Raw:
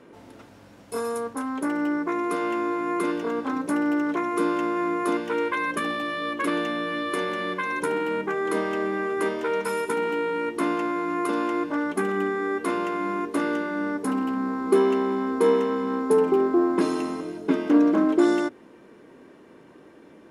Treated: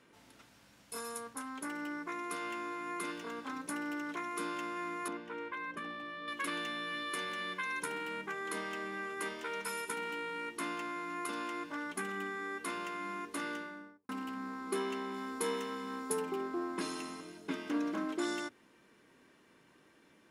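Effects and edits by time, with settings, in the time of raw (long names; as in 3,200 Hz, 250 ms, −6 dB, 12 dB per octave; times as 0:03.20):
0:05.08–0:06.28: low-pass filter 1,000 Hz 6 dB per octave
0:13.49–0:14.09: fade out and dull
0:15.14–0:16.22: high-shelf EQ 5,400 Hz +7 dB
whole clip: guitar amp tone stack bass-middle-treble 5-5-5; mains-hum notches 50/100 Hz; level +3 dB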